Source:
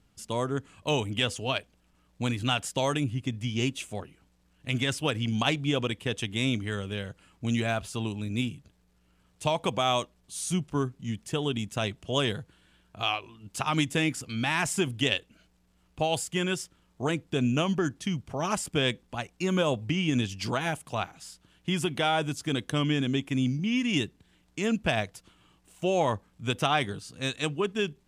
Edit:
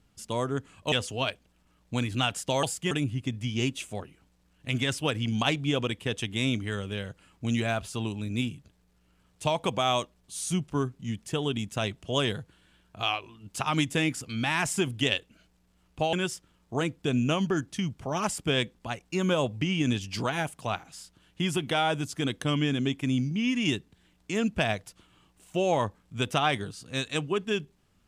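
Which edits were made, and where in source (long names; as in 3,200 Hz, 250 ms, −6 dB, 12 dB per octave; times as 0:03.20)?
0:00.92–0:01.20: remove
0:16.13–0:16.41: move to 0:02.91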